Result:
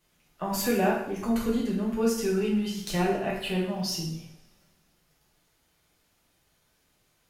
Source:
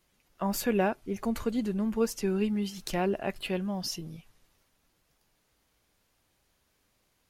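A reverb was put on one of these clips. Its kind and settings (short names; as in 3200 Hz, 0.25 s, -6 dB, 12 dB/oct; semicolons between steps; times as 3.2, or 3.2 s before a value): two-slope reverb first 0.68 s, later 2.1 s, from -25 dB, DRR -4 dB; gain -2 dB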